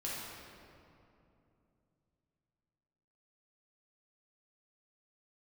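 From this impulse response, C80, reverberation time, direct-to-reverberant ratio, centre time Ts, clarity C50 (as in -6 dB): -0.5 dB, 2.8 s, -7.0 dB, 0.142 s, -2.5 dB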